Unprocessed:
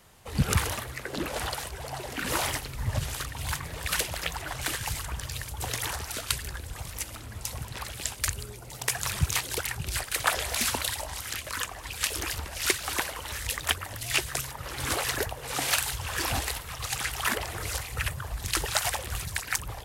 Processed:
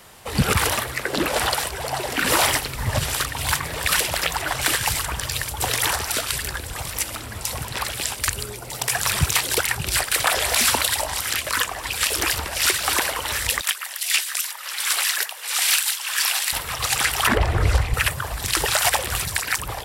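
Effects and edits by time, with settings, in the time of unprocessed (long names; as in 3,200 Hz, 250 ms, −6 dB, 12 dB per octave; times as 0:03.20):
0:13.61–0:16.53: Bessel high-pass filter 2,000 Hz
0:17.27–0:17.94: RIAA equalisation playback
whole clip: low-shelf EQ 200 Hz −8.5 dB; notch filter 6,500 Hz, Q 17; boost into a limiter +16.5 dB; level −5 dB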